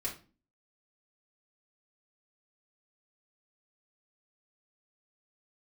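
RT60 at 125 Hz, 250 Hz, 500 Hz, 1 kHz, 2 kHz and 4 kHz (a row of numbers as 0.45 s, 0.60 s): 0.45 s, 0.55 s, 0.40 s, 0.35 s, 0.30 s, 0.30 s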